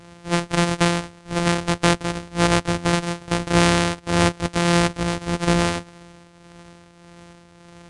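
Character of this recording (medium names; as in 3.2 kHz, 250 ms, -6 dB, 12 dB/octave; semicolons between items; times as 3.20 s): a buzz of ramps at a fixed pitch in blocks of 256 samples; tremolo triangle 1.7 Hz, depth 60%; AAC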